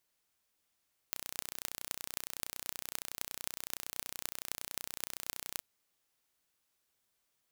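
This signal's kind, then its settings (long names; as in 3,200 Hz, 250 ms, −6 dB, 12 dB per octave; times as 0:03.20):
impulse train 30.7 per second, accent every 8, −7 dBFS 4.48 s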